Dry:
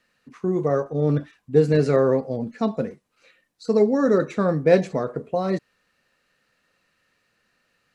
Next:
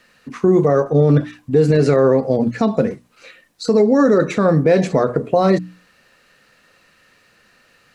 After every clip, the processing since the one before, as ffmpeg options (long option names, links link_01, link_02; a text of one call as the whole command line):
ffmpeg -i in.wav -filter_complex "[0:a]bandreject=frequency=60:width_type=h:width=6,bandreject=frequency=120:width_type=h:width=6,bandreject=frequency=180:width_type=h:width=6,bandreject=frequency=240:width_type=h:width=6,bandreject=frequency=300:width_type=h:width=6,asplit=2[link_01][link_02];[link_02]acompressor=threshold=-28dB:ratio=6,volume=-1dB[link_03];[link_01][link_03]amix=inputs=2:normalize=0,alimiter=limit=-13.5dB:level=0:latency=1:release=93,volume=8.5dB" out.wav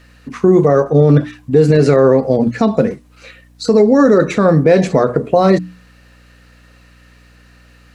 ffmpeg -i in.wav -af "aeval=exprs='val(0)+0.00355*(sin(2*PI*60*n/s)+sin(2*PI*2*60*n/s)/2+sin(2*PI*3*60*n/s)/3+sin(2*PI*4*60*n/s)/4+sin(2*PI*5*60*n/s)/5)':channel_layout=same,volume=3.5dB" out.wav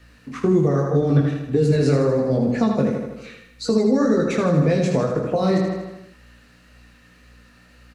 ffmpeg -i in.wav -filter_complex "[0:a]flanger=delay=17:depth=6.1:speed=1.9,asplit=2[link_01][link_02];[link_02]aecho=0:1:79|158|237|316|395|474|553:0.473|0.27|0.154|0.0876|0.0499|0.0285|0.0162[link_03];[link_01][link_03]amix=inputs=2:normalize=0,acrossover=split=270|3000[link_04][link_05][link_06];[link_05]acompressor=threshold=-18dB:ratio=6[link_07];[link_04][link_07][link_06]amix=inputs=3:normalize=0,volume=-2dB" out.wav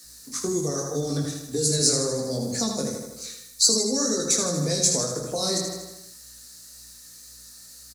ffmpeg -i in.wav -filter_complex "[0:a]acrossover=split=160[link_01][link_02];[link_01]adelay=40[link_03];[link_03][link_02]amix=inputs=2:normalize=0,aexciter=amount=14.5:drive=8.9:freq=4400,volume=-8dB" out.wav